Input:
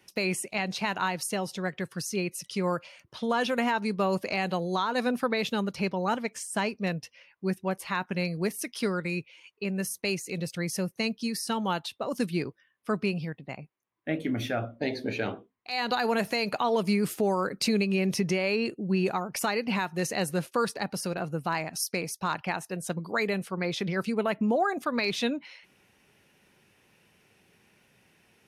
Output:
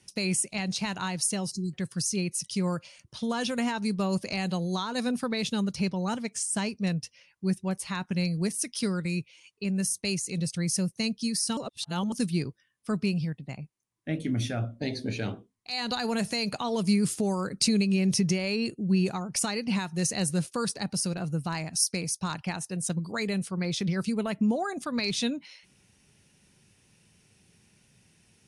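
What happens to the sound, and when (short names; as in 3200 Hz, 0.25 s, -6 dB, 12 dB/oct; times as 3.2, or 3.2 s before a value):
1.52–1.74 spectral delete 390–4000 Hz
11.57–12.12 reverse
whole clip: elliptic low-pass 10000 Hz, stop band 60 dB; tone controls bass +13 dB, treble +14 dB; gain -5 dB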